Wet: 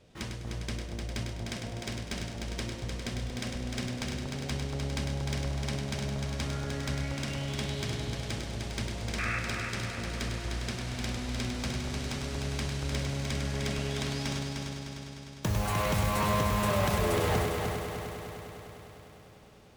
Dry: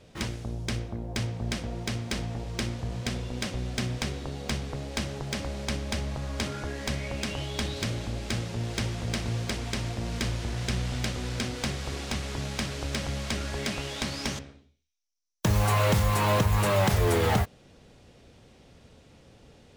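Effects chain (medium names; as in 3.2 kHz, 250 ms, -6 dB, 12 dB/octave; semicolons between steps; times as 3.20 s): painted sound noise, 9.18–9.39 s, 1.1–2.7 kHz -28 dBFS; multi-head delay 101 ms, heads first and third, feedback 72%, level -6 dB; trim -6 dB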